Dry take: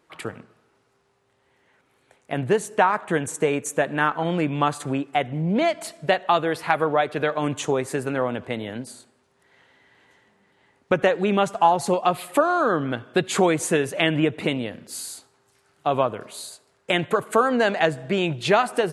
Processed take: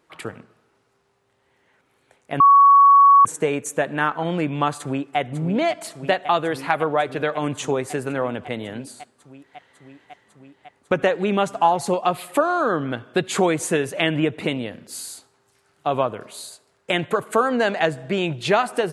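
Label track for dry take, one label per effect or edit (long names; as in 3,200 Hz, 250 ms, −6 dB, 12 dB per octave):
2.400000	3.250000	beep over 1,120 Hz −8 dBFS
4.780000	5.180000	delay throw 550 ms, feedback 85%, level −9.5 dB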